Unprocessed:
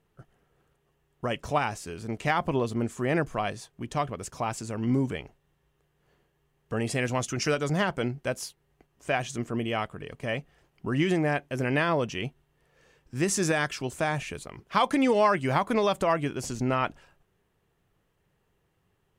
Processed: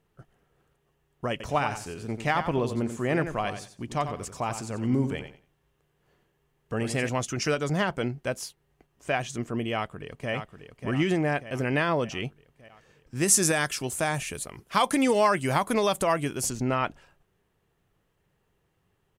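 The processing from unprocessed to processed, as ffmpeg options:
-filter_complex "[0:a]asettb=1/sr,asplit=3[a][b][c];[a]atrim=end=1.314[d];[b]atrim=start=1.31:end=7.09,asetpts=PTS-STARTPTS,afade=t=in:d=0.004:c=qsin,afade=t=out:st=5.776:d=0.004:c=qsin,aecho=1:1:90|180|270:0.335|0.0737|0.0162,atrim=end_sample=254898[e];[c]atrim=start=7.086[f];[d][e]acrossfade=d=0.004:c1=hsin:c2=qsin[g];[g][f]acrossfade=d=0.004:c1=qsin:c2=hsin,asplit=2[h][i];[i]afade=t=in:st=9.74:d=0.01,afade=t=out:st=10.32:d=0.01,aecho=0:1:590|1180|1770|2360|2950|3540|4130|4720:0.421697|0.253018|0.151811|0.0910864|0.0546519|0.0327911|0.0196747|0.0118048[j];[h][j]amix=inputs=2:normalize=0,asettb=1/sr,asplit=3[k][l][m];[k]atrim=end=13.214[n];[l]atrim=start=13.21:end=16.5,asetpts=PTS-STARTPTS,afade=t=in:d=0.004:c=qsin,afade=t=out:st=3.286:d=0.004:c=qsin,equalizer=f=11k:w=0.66:g=14.5[o];[m]atrim=start=16.496[p];[n][o]acrossfade=d=0.004:c1=hsin:c2=qsin[q];[q][p]acrossfade=d=0.004:c1=qsin:c2=hsin"

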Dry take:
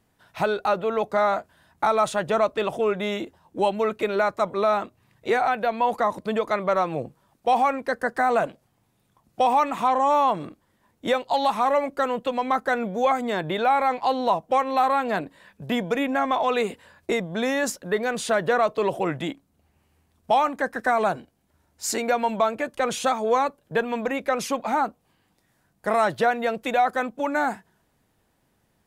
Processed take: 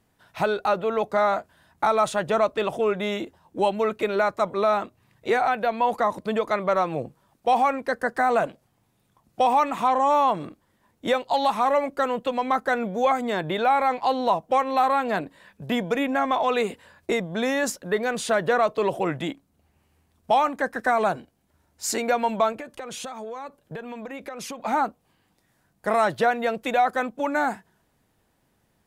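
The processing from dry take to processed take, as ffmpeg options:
-filter_complex "[0:a]asettb=1/sr,asplit=3[a][b][c];[a]atrim=end=22.524[d];[b]atrim=start=22.52:end=24.62,asetpts=PTS-STARTPTS,afade=t=in:d=0.004:c=qsin,afade=t=out:st=2.096:d=0.004:c=qsin,acompressor=threshold=-31dB:ratio=16:attack=3.2:release=140:knee=1:detection=peak[e];[c]atrim=start=24.616[f];[d][e]acrossfade=d=0.004:c1=hsin:c2=qsin[g];[g][f]acrossfade=d=0.004:c1=qsin:c2=hsin"

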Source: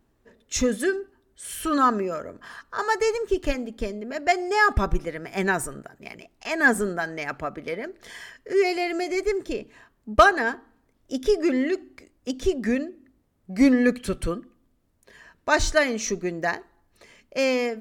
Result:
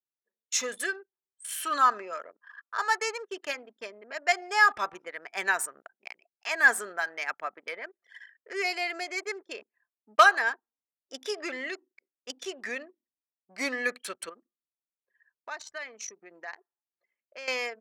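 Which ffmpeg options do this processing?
-filter_complex "[0:a]asettb=1/sr,asplit=3[a][b][c];[a]atrim=end=14.294[d];[b]atrim=start=14.29:end=17.48,asetpts=PTS-STARTPTS,afade=t=in:d=0.004:c=qsin,afade=t=out:st=3.186:d=0.004:c=qsin,acompressor=threshold=-35dB:ratio=3:attack=3.2:release=140:knee=1:detection=peak[e];[c]atrim=start=17.476[f];[d][e]acrossfade=d=0.004:c1=hsin:c2=qsin[g];[g][f]acrossfade=d=0.004:c1=qsin:c2=hsin,anlmdn=2.51,highpass=920"

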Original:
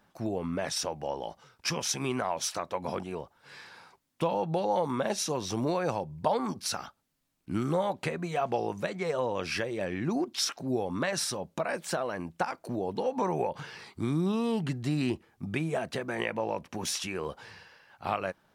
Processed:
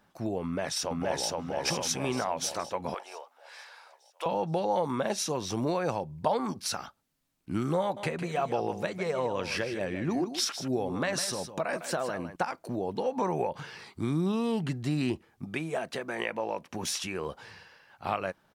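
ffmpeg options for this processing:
-filter_complex "[0:a]asplit=2[a][b];[b]afade=t=in:st=0.43:d=0.01,afade=t=out:st=1.28:d=0.01,aecho=0:1:470|940|1410|1880|2350|2820|3290|3760:0.944061|0.519233|0.285578|0.157068|0.0863875|0.0475131|0.0261322|0.0143727[c];[a][c]amix=inputs=2:normalize=0,asettb=1/sr,asplit=3[d][e][f];[d]atrim=end=2.944[g];[e]atrim=start=2.94:end=4.26,asetpts=PTS-STARTPTS,afade=t=in:d=0.004:c=qsin,afade=t=out:st=1.316:d=0.004:c=qsin,highpass=f=580:w=0.5412,highpass=f=580:w=1.3066[h];[f]atrim=start=4.256[i];[g][h]acrossfade=d=0.004:c1=hsin:c2=qsin[j];[j][i]acrossfade=d=0.004:c1=qsin:c2=hsin,asettb=1/sr,asplit=3[k][l][m];[k]atrim=end=7.814[n];[l]atrim=start=7.81:end=12.36,asetpts=PTS-STARTPTS,afade=t=in:d=0.004:c=qsin,afade=t=out:st=4.546:d=0.004:c=qsin,aecho=1:1:155:0.299,atrim=end_sample=200655[o];[m]atrim=start=12.356[p];[n][o]acrossfade=d=0.004:c1=hsin:c2=qsin[q];[q][p]acrossfade=d=0.004:c1=qsin:c2=hsin,asettb=1/sr,asplit=3[r][s][t];[r]atrim=end=15.444[u];[s]atrim=start=15.44:end=16.71,asetpts=PTS-STARTPTS,afade=t=in:d=0.004:c=qsin,afade=t=out:st=1.266:d=0.004:c=qsin,highpass=f=270:p=1[v];[t]atrim=start=16.706[w];[u][v]acrossfade=d=0.004:c1=hsin:c2=qsin[x];[x][w]acrossfade=d=0.004:c1=qsin:c2=hsin"

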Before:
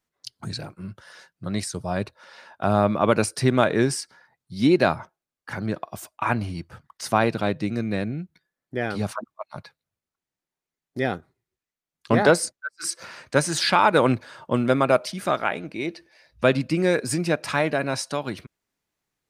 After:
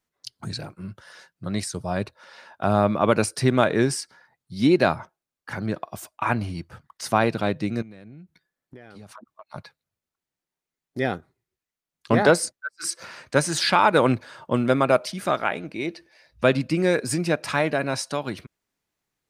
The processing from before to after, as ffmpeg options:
-filter_complex "[0:a]asettb=1/sr,asplit=3[a][b][c];[a]atrim=end=7.824[d];[b]atrim=start=7.82:end=9.54,asetpts=PTS-STARTPTS,afade=t=in:d=0.004:c=qsin,afade=t=out:st=1.716:d=0.004:c=qsin,acompressor=threshold=-39dB:ratio=20:attack=3.2:release=140:knee=1:detection=peak[e];[c]atrim=start=9.536[f];[d][e]acrossfade=d=0.004:c1=hsin:c2=qsin[g];[g][f]acrossfade=d=0.004:c1=qsin:c2=hsin"

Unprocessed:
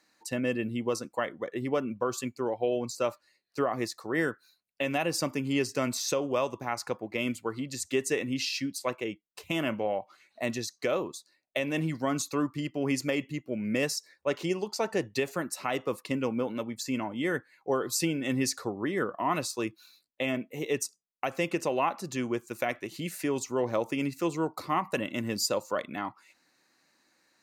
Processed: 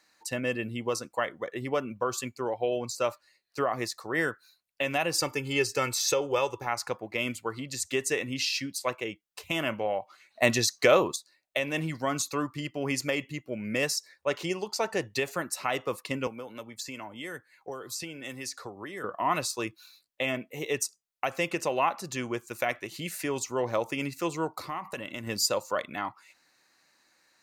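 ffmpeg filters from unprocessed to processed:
-filter_complex "[0:a]asettb=1/sr,asplit=3[a][b][c];[a]atrim=end=5.184[d];[b]atrim=start=5.18:end=6.67,asetpts=PTS-STARTPTS,afade=t=in:d=0.004:c=qsin,afade=t=out:st=1.486:d=0.004:c=qsin,aecho=1:1:2.3:0.65,atrim=end_sample=65709[e];[c]atrim=start=6.666[f];[d][e]acrossfade=d=0.004:c1=hsin:c2=qsin[g];[g][f]acrossfade=d=0.004:c1=qsin:c2=hsin,asettb=1/sr,asplit=3[h][i][j];[h]atrim=end=16.274[k];[i]atrim=start=16.27:end=19.04,asetpts=PTS-STARTPTS,afade=t=in:d=0.004:c=qsin,afade=t=out:st=2.766:d=0.004:c=qsin,acrossover=split=360|6000[l][m][n];[l]acompressor=threshold=-44dB:ratio=4[o];[m]acompressor=threshold=-41dB:ratio=4[p];[n]acompressor=threshold=-46dB:ratio=4[q];[o][p][q]amix=inputs=3:normalize=0[r];[j]atrim=start=19.036[s];[k][r]acrossfade=d=0.004:c1=hsin:c2=qsin[t];[t][s]acrossfade=d=0.004:c1=qsin:c2=hsin,asettb=1/sr,asplit=3[u][v][w];[u]atrim=end=24.514[x];[v]atrim=start=24.51:end=25.27,asetpts=PTS-STARTPTS,afade=t=in:d=0.004:c=qsin,afade=t=out:st=0.756:d=0.004:c=qsin,acompressor=threshold=-33dB:ratio=4:attack=3.2:release=140:knee=1:detection=peak[y];[w]atrim=start=25.266[z];[x][y]acrossfade=d=0.004:c1=hsin:c2=qsin[aa];[aa][z]acrossfade=d=0.004:c1=qsin:c2=hsin,asplit=3[ab][ac][ad];[ab]atrim=end=10.422[ae];[ac]atrim=start=10.418:end=11.162,asetpts=PTS-STARTPTS,volume=8dB[af];[ad]atrim=start=11.158[ag];[ae][af]acrossfade=d=0.004:c1=hsin:c2=hsin[ah];[ah][ag]acrossfade=d=0.004:c1=hsin:c2=hsin,equalizer=f=250:t=o:w=1.8:g=-7,volume=3dB"

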